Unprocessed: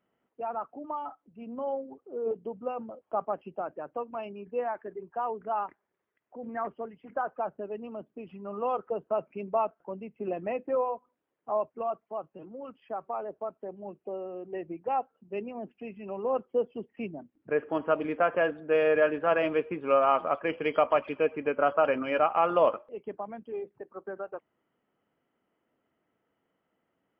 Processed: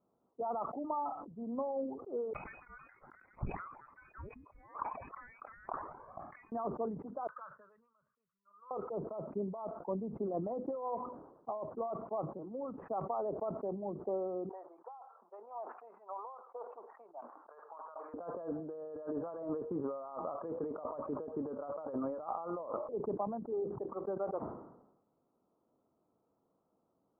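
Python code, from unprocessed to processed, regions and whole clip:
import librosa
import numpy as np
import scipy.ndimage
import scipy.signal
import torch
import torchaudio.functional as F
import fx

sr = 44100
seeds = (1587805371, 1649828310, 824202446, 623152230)

y = fx.chain(x, sr, fx.env_flanger(rest_ms=2.1, full_db=-26.0),
    fx.freq_invert(carrier_hz=2700),
    fx.sustainer(db_per_s=23.0), at=(2.33, 6.52))
y = fx.chain(y, sr, fx.cheby2_highpass(hz=830.0, order=4, stop_db=40),
    fx.band_widen(depth_pct=70), at=(7.27, 8.71))
y = fx.chain(y, sr, fx.highpass(hz=890.0, slope=24),
    fx.over_compress(threshold_db=-47.0, ratio=-1.0), at=(14.49, 18.14))
y = fx.over_compress(y, sr, threshold_db=-34.0, ratio=-1.0)
y = scipy.signal.sosfilt(scipy.signal.butter(8, 1200.0, 'lowpass', fs=sr, output='sos'), y)
y = fx.sustainer(y, sr, db_per_s=63.0)
y = F.gain(torch.from_numpy(y), -4.0).numpy()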